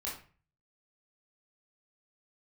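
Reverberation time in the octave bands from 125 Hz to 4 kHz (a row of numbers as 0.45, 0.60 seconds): 0.65, 0.45, 0.40, 0.40, 0.40, 0.30 seconds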